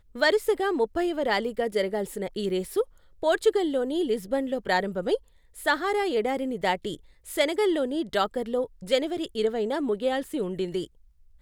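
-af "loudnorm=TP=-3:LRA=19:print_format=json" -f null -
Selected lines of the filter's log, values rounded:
"input_i" : "-27.3",
"input_tp" : "-8.8",
"input_lra" : "2.3",
"input_thresh" : "-37.6",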